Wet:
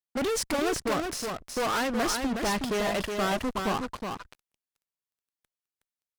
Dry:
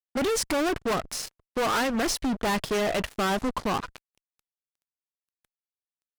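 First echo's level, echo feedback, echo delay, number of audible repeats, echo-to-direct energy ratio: -5.0 dB, no steady repeat, 0.368 s, 1, -5.0 dB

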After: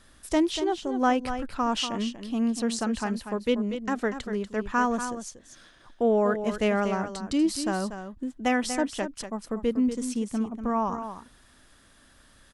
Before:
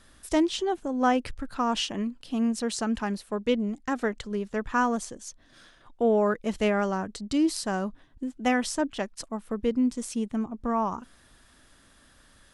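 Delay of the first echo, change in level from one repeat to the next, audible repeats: 0.24 s, no steady repeat, 1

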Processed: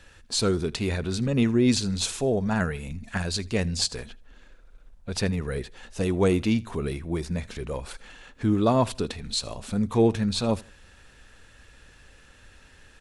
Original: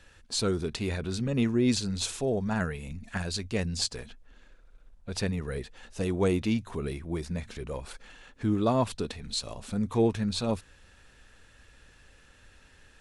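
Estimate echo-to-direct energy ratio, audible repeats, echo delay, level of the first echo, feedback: -23.0 dB, 2, 79 ms, -23.5 dB, 31%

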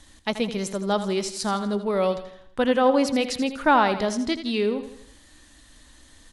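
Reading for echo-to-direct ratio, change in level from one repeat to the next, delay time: -10.5 dB, -6.5 dB, 82 ms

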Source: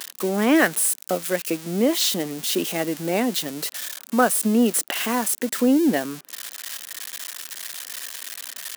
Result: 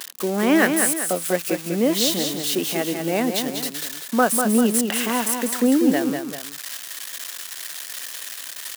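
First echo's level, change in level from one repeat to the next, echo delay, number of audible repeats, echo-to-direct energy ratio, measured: -6.0 dB, -6.5 dB, 0.195 s, 2, -5.0 dB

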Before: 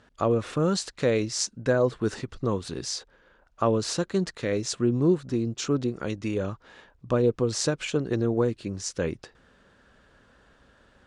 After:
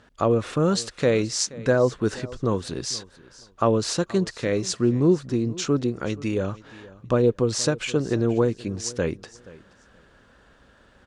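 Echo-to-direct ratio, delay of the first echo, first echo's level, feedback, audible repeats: -20.0 dB, 0.477 s, -20.0 dB, 20%, 2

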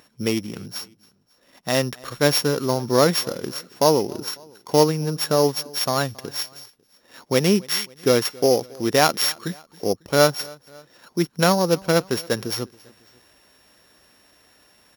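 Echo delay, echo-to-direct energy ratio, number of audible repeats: 0.274 s, -23.0 dB, 2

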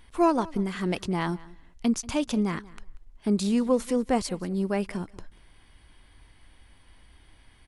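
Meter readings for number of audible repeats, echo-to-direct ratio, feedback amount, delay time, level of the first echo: 1, -21.0 dB, no steady repeat, 0.187 s, -21.0 dB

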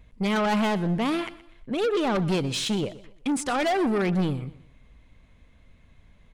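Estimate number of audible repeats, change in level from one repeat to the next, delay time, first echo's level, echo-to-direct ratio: 2, -9.5 dB, 0.123 s, -17.5 dB, -17.0 dB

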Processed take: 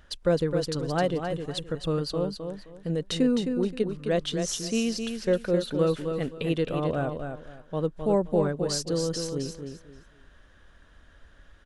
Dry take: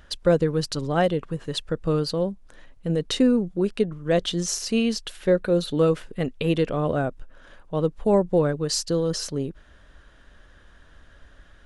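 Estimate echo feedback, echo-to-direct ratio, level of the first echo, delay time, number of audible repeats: 24%, -6.0 dB, -6.5 dB, 0.262 s, 3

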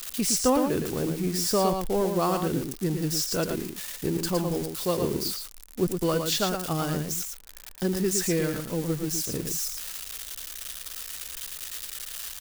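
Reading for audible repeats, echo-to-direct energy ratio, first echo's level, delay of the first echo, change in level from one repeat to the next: 1, -6.0 dB, -6.0 dB, 0.113 s, no steady repeat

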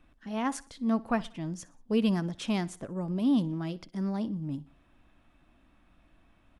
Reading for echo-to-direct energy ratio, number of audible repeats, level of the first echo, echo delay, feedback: -20.0 dB, 3, -21.0 dB, 61 ms, 46%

